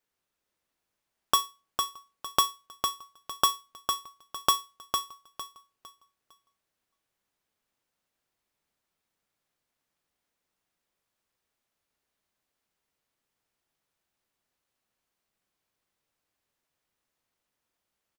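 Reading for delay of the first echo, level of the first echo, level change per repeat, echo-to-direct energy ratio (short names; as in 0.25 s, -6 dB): 0.455 s, -5.5 dB, -11.0 dB, -5.0 dB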